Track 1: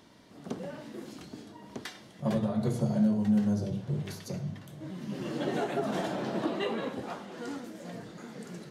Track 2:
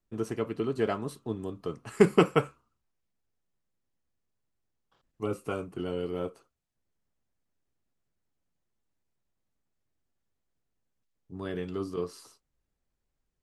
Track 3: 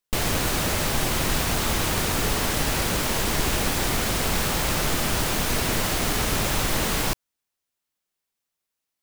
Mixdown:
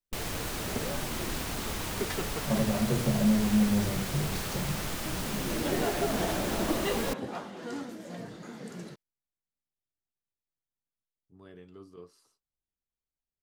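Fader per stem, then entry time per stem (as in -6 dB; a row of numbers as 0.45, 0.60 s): +1.0, -15.5, -11.0 dB; 0.25, 0.00, 0.00 s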